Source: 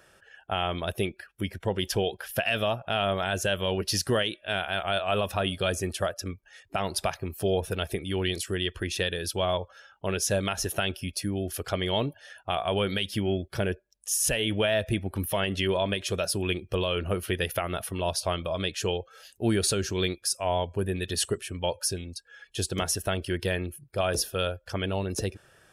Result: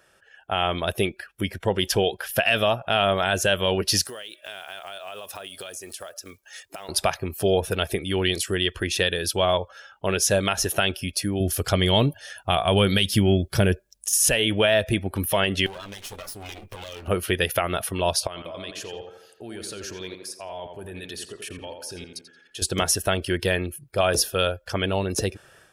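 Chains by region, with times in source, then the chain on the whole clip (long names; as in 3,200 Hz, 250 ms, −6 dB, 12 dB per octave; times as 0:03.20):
0:04.05–0:06.89: one scale factor per block 7 bits + bass and treble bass −13 dB, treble +9 dB + downward compressor 8 to 1, threshold −40 dBFS
0:11.40–0:14.13: de-essing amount 60% + bass and treble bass +8 dB, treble +7 dB
0:15.66–0:17.08: lower of the sound and its delayed copy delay 9.6 ms + high-shelf EQ 7,600 Hz +8.5 dB + downward compressor 12 to 1, threshold −39 dBFS
0:18.27–0:22.62: low-shelf EQ 190 Hz −7 dB + output level in coarse steps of 21 dB + tape delay 85 ms, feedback 54%, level −4.5 dB, low-pass 2,200 Hz
whole clip: low-shelf EQ 280 Hz −4 dB; automatic gain control gain up to 8 dB; level −1.5 dB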